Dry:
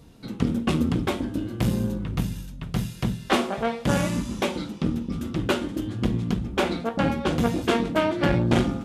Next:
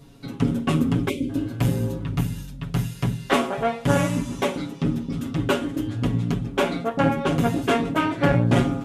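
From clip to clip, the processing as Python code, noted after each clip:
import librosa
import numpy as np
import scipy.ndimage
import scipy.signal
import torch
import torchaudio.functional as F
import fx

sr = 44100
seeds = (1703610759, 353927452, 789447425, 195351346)

y = fx.spec_box(x, sr, start_s=1.08, length_s=0.22, low_hz=560.0, high_hz=2000.0, gain_db=-25)
y = y + 0.83 * np.pad(y, (int(7.2 * sr / 1000.0), 0))[:len(y)]
y = fx.dynamic_eq(y, sr, hz=4500.0, q=1.7, threshold_db=-48.0, ratio=4.0, max_db=-6)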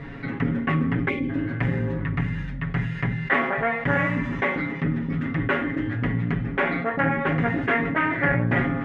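y = fx.lowpass_res(x, sr, hz=1900.0, q=7.2)
y = fx.comb_fb(y, sr, f0_hz=160.0, decay_s=0.61, harmonics='odd', damping=0.0, mix_pct=60)
y = fx.env_flatten(y, sr, amount_pct=50)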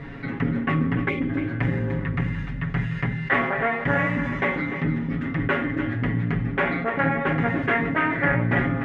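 y = x + 10.0 ** (-11.0 / 20.0) * np.pad(x, (int(297 * sr / 1000.0), 0))[:len(x)]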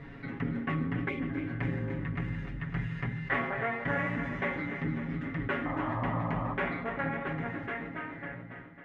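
y = fx.fade_out_tail(x, sr, length_s=2.24)
y = fx.spec_paint(y, sr, seeds[0], shape='noise', start_s=5.65, length_s=0.89, low_hz=510.0, high_hz=1300.0, level_db=-28.0)
y = fx.echo_heads(y, sr, ms=275, heads='first and second', feedback_pct=48, wet_db=-15)
y = F.gain(torch.from_numpy(y), -9.0).numpy()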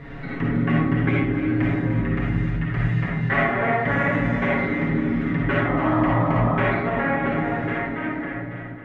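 y = fx.rev_freeverb(x, sr, rt60_s=0.85, hf_ratio=0.25, predelay_ms=15, drr_db=-3.0)
y = F.gain(torch.from_numpy(y), 6.0).numpy()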